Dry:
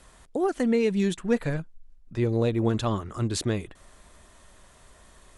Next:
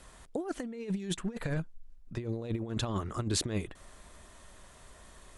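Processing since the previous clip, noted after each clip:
compressor whose output falls as the input rises −28 dBFS, ratio −0.5
level −4.5 dB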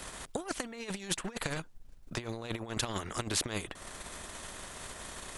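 transient designer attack +5 dB, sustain −5 dB
every bin compressed towards the loudest bin 2 to 1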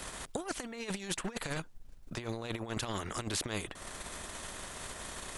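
brickwall limiter −24.5 dBFS, peak gain reduction 8 dB
level +1 dB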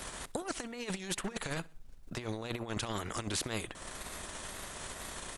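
repeating echo 65 ms, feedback 44%, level −23.5 dB
tape wow and flutter 73 cents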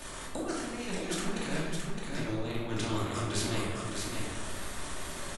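single-tap delay 614 ms −4.5 dB
rectangular room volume 610 cubic metres, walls mixed, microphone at 2.6 metres
level −4 dB

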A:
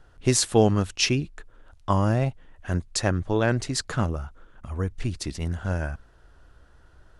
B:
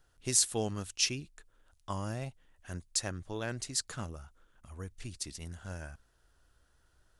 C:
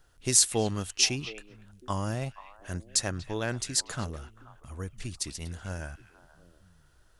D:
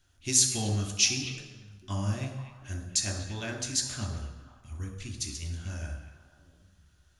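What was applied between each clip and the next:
first-order pre-emphasis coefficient 0.8; level −1.5 dB
echo through a band-pass that steps 239 ms, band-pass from 2,600 Hz, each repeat −1.4 octaves, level −10 dB; level +5.5 dB
convolution reverb RT60 1.0 s, pre-delay 3 ms, DRR 2 dB; level −6.5 dB

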